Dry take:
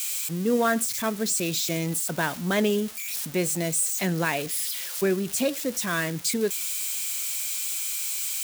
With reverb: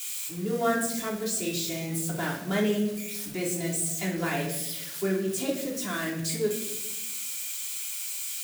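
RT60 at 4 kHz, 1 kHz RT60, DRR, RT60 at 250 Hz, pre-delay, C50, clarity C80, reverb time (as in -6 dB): 0.55 s, 0.75 s, -3.5 dB, 1.4 s, 3 ms, 5.0 dB, 9.0 dB, 0.95 s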